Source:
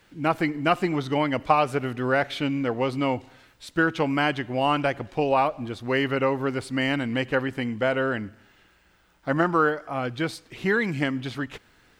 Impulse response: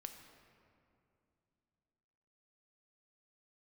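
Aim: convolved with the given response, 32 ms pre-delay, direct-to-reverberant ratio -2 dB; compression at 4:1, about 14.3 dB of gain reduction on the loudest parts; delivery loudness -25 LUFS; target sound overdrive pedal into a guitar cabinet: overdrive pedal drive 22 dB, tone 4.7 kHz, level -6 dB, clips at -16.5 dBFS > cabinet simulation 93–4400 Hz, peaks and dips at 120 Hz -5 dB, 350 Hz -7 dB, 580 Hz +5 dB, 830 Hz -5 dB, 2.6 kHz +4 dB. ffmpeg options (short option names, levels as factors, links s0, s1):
-filter_complex "[0:a]acompressor=threshold=0.0224:ratio=4,asplit=2[s0][s1];[1:a]atrim=start_sample=2205,adelay=32[s2];[s1][s2]afir=irnorm=-1:irlink=0,volume=2.11[s3];[s0][s3]amix=inputs=2:normalize=0,asplit=2[s4][s5];[s5]highpass=f=720:p=1,volume=12.6,asoftclip=type=tanh:threshold=0.15[s6];[s4][s6]amix=inputs=2:normalize=0,lowpass=f=4700:p=1,volume=0.501,highpass=93,equalizer=f=120:t=q:w=4:g=-5,equalizer=f=350:t=q:w=4:g=-7,equalizer=f=580:t=q:w=4:g=5,equalizer=f=830:t=q:w=4:g=-5,equalizer=f=2600:t=q:w=4:g=4,lowpass=f=4400:w=0.5412,lowpass=f=4400:w=1.3066"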